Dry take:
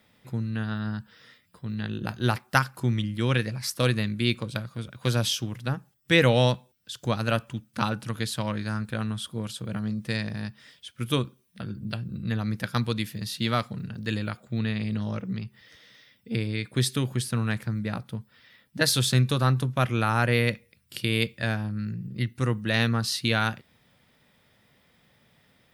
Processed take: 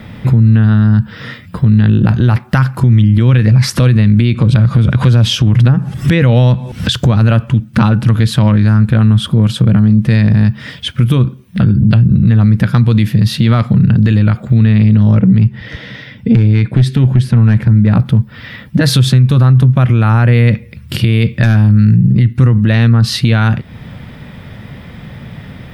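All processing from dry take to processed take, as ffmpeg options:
-filter_complex "[0:a]asettb=1/sr,asplit=3[a][b][c];[a]atrim=end=3.394[d];[b]atrim=start=3.39:end=6.93,asetpts=PTS-STARTPTS,afade=t=in:d=0.004:c=qsin,afade=t=out:st=3.536:d=0.004:c=qsin,lowpass=11k,acompressor=mode=upward:threshold=-26dB:ratio=2.5:attack=3.2:release=140:knee=2.83:detection=peak[e];[c]atrim=start=6.926[f];[d][e]acrossfade=d=0.004:c1=hsin:c2=qsin[g];[g][f]acrossfade=d=0.004:c1=qsin:c2=hsin,asettb=1/sr,asplit=3[h][i][j];[h]atrim=end=15.154[k];[i]atrim=start=15.15:end=17.91,asetpts=PTS-STARTPTS,afade=t=in:d=0.004:c=qsin,afade=t=out:st=2.756:d=0.004:c=qsin,lowpass=f=3.9k:p=1,bandreject=f=1.2k:w=9.3,aeval=exprs='clip(val(0),-1,0.0944)':c=same[l];[j]atrim=start=17.906[m];[k][l]acrossfade=d=0.004:c1=hsin:c2=qsin[n];[n][m]acrossfade=d=0.004:c1=qsin:c2=hsin,asettb=1/sr,asplit=3[o][p][q];[o]atrim=end=21.434[r];[p]atrim=start=21.43:end=21.96,asetpts=PTS-STARTPTS,afade=t=in:d=0.004:c=qsin,afade=t=out:st=0.526:d=0.004:c=qsin,highshelf=f=2.8k:g=8.5,aeval=exprs='0.15*(abs(mod(val(0)/0.15+3,4)-2)-1)':c=same[s];[q]atrim=start=21.956[t];[r][s]acrossfade=d=0.004:c1=hsin:c2=qsin[u];[u][t]acrossfade=d=0.004:c1=qsin:c2=hsin,bass=f=250:g=12,treble=f=4k:g=-12,acompressor=threshold=-35dB:ratio=2,alimiter=level_in=27.5dB:limit=-1dB:release=50:level=0:latency=1,volume=-1dB"

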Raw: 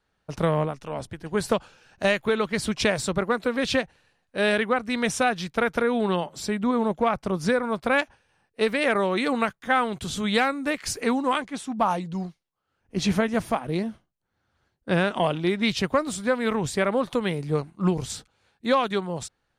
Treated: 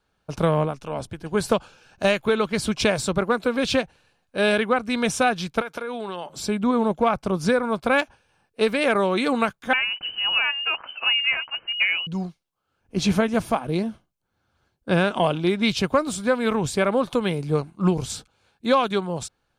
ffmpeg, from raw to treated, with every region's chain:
-filter_complex "[0:a]asettb=1/sr,asplit=3[a][b][c];[a]atrim=end=5.614[d];[b]atrim=start=5.61:end=6.3,asetpts=PTS-STARTPTS,afade=t=in:d=0.004:c=qsin,afade=t=out:st=0.686:d=0.004:c=qsin,highpass=f=510:p=1,acompressor=threshold=-28dB:ratio=10:attack=3.2:release=140:knee=1:detection=peak[e];[c]atrim=start=6.296[f];[d][e]acrossfade=d=0.004:c1=hsin:c2=qsin[g];[g][f]acrossfade=d=0.004:c1=qsin:c2=hsin,asettb=1/sr,asplit=3[h][i][j];[h]atrim=end=9.734[k];[i]atrim=start=9.73:end=12.07,asetpts=PTS-STARTPTS,afade=t=in:d=0.004:c=qsin,afade=t=out:st=2.336:d=0.004:c=qsin,deesser=0.9,lowpass=f=2.6k:t=q:w=0.5098,lowpass=f=2.6k:t=q:w=0.6013,lowpass=f=2.6k:t=q:w=0.9,lowpass=f=2.6k:t=q:w=2.563,afreqshift=-3100[l];[j]atrim=start=12.066[m];[k][l]acrossfade=d=0.004:c1=hsin:c2=qsin[n];[n][m]acrossfade=d=0.004:c1=qsin:c2=hsin,bandreject=f=1.9k:w=6.9,deesser=0.5,volume=2.5dB"

